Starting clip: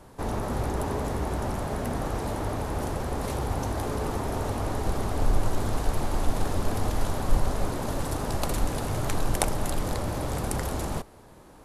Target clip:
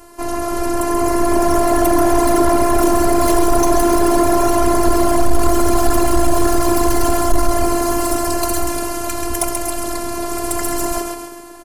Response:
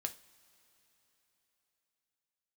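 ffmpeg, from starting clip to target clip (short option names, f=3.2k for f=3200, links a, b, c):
-filter_complex "[0:a]highpass=f=51:p=1,bandreject=f=3.6k:w=5.6,asplit=7[a][b][c][d][e][f][g];[b]adelay=134,afreqshift=48,volume=-6dB[h];[c]adelay=268,afreqshift=96,volume=-12.7dB[i];[d]adelay=402,afreqshift=144,volume=-19.5dB[j];[e]adelay=536,afreqshift=192,volume=-26.2dB[k];[f]adelay=670,afreqshift=240,volume=-33dB[l];[g]adelay=804,afreqshift=288,volume=-39.7dB[m];[a][h][i][j][k][l][m]amix=inputs=7:normalize=0,asplit=2[n][o];[1:a]atrim=start_sample=2205[p];[o][p]afir=irnorm=-1:irlink=0,volume=-1dB[q];[n][q]amix=inputs=2:normalize=0,afftfilt=real='hypot(re,im)*cos(PI*b)':imag='0':win_size=512:overlap=0.75,dynaudnorm=f=260:g=9:m=11.5dB,highshelf=f=5k:g=6.5,asoftclip=type=tanh:threshold=-10.5dB,volume=7.5dB"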